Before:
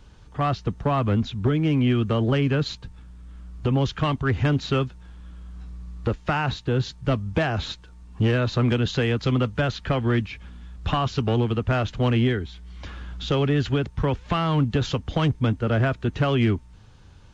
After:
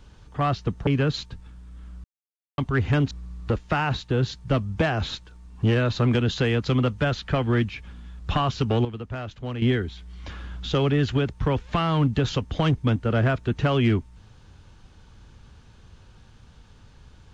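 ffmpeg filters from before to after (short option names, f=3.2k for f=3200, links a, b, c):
-filter_complex "[0:a]asplit=7[a][b][c][d][e][f][g];[a]atrim=end=0.872[h];[b]atrim=start=2.388:end=3.56,asetpts=PTS-STARTPTS,afade=t=out:st=1.168:d=0.004:c=hsin[i];[c]atrim=start=3.56:end=4.1,asetpts=PTS-STARTPTS,volume=0[j];[d]atrim=start=4.1:end=4.632,asetpts=PTS-STARTPTS,afade=t=in:d=0.004:c=hsin[k];[e]atrim=start=5.678:end=11.422[l];[f]atrim=start=11.418:end=12.192,asetpts=PTS-STARTPTS,volume=-10dB[m];[g]atrim=start=12.188[n];[i][j][k]concat=n=3:v=0:a=1[o];[h][o]acrossfade=d=0.004:c1=hsin:c2=hsin[p];[p][l]acrossfade=d=0.004:c1=hsin:c2=hsin[q];[q][m]acrossfade=d=0.004:c1=hsin:c2=hsin[r];[r][n]acrossfade=d=0.004:c1=hsin:c2=hsin"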